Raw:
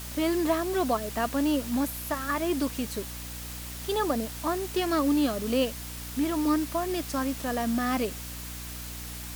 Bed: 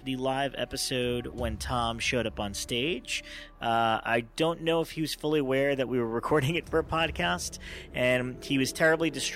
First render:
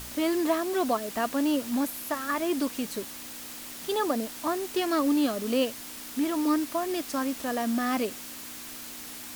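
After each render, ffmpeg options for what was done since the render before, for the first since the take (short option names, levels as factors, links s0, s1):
-af "bandreject=f=60:t=h:w=4,bandreject=f=120:t=h:w=4,bandreject=f=180:t=h:w=4"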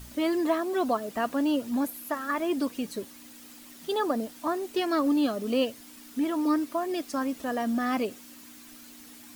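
-af "afftdn=nr=10:nf=-41"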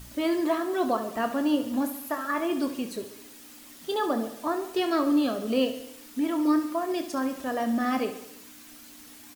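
-filter_complex "[0:a]asplit=2[s0][s1];[s1]adelay=27,volume=0.299[s2];[s0][s2]amix=inputs=2:normalize=0,aecho=1:1:69|138|207|276|345|414:0.266|0.152|0.0864|0.0493|0.0281|0.016"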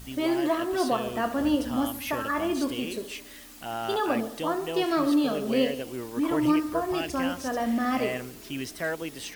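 -filter_complex "[1:a]volume=0.422[s0];[0:a][s0]amix=inputs=2:normalize=0"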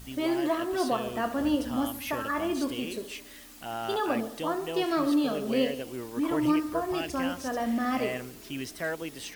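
-af "volume=0.794"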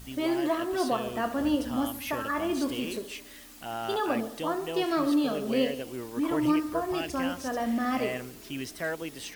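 -filter_complex "[0:a]asettb=1/sr,asplit=3[s0][s1][s2];[s0]atrim=end=2.494[s3];[s1]atrim=start=2.49:end=2.99,asetpts=PTS-STARTPTS,afade=t=in:d=0.004:c=qsin,afade=t=out:st=0.496:d=0.004:c=qsin,aeval=exprs='val(0)+0.5*0.00708*sgn(val(0))':c=same[s4];[s2]atrim=start=2.986[s5];[s3][s4]acrossfade=d=0.004:c1=hsin:c2=qsin[s6];[s6][s5]acrossfade=d=0.004:c1=qsin:c2=hsin"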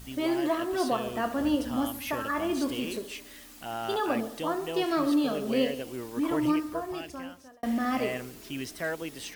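-filter_complex "[0:a]asplit=2[s0][s1];[s0]atrim=end=7.63,asetpts=PTS-STARTPTS,afade=t=out:st=6.35:d=1.28[s2];[s1]atrim=start=7.63,asetpts=PTS-STARTPTS,afade=t=in:d=0.004:c=hsin[s3];[s2][s3]concat=n=2:v=0:a=1"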